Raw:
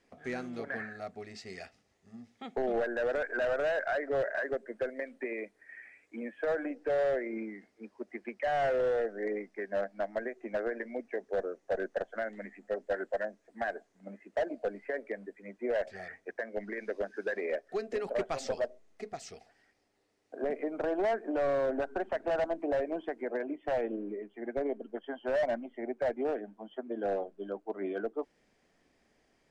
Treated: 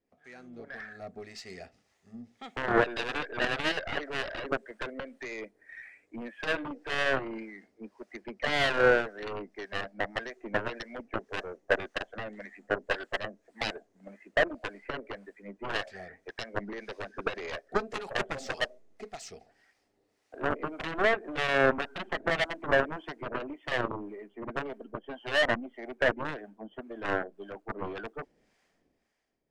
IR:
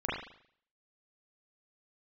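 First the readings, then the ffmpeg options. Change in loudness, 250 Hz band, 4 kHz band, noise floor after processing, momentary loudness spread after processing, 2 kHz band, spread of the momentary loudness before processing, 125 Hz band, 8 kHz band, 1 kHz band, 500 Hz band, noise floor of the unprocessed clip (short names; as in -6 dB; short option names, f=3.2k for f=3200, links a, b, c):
+2.5 dB, +0.5 dB, +15.5 dB, -74 dBFS, 19 LU, +8.0 dB, 14 LU, +9.0 dB, n/a, +4.0 dB, -1.0 dB, -72 dBFS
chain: -filter_complex "[0:a]dynaudnorm=f=130:g=13:m=14dB,acrossover=split=710[a][b];[a]aeval=exprs='val(0)*(1-0.7/2+0.7/2*cos(2*PI*1.8*n/s))':c=same[c];[b]aeval=exprs='val(0)*(1-0.7/2-0.7/2*cos(2*PI*1.8*n/s))':c=same[d];[c][d]amix=inputs=2:normalize=0,aeval=exprs='0.316*(cos(1*acos(clip(val(0)/0.316,-1,1)))-cos(1*PI/2))+0.141*(cos(3*acos(clip(val(0)/0.316,-1,1)))-cos(3*PI/2))+0.0158*(cos(6*acos(clip(val(0)/0.316,-1,1)))-cos(6*PI/2))+0.00708*(cos(8*acos(clip(val(0)/0.316,-1,1)))-cos(8*PI/2))':c=same"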